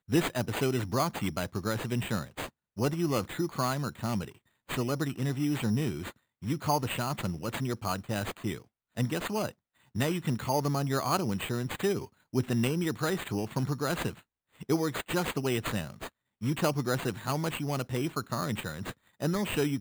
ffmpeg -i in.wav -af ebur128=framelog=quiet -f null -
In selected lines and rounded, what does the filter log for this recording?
Integrated loudness:
  I:         -31.7 LUFS
  Threshold: -42.0 LUFS
Loudness range:
  LRA:         2.3 LU
  Threshold: -52.1 LUFS
  LRA low:   -33.0 LUFS
  LRA high:  -30.7 LUFS